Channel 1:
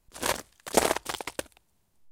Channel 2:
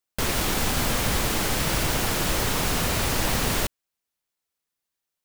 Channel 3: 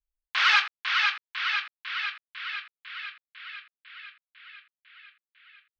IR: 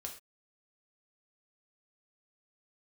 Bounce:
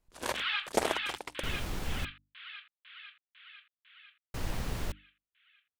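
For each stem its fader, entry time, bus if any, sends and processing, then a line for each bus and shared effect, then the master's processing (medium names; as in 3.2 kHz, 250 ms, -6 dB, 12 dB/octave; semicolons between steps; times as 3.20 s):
-5.5 dB, 0.00 s, no send, none
-15.0 dB, 1.25 s, muted 2.05–4.34 s, no send, bass shelf 180 Hz +10 dB
-5.5 dB, 0.00 s, no send, four-pole ladder low-pass 3.9 kHz, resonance 55%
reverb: none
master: treble shelf 5.8 kHz -7 dB; hum notches 50/100/150/200/250/300 Hz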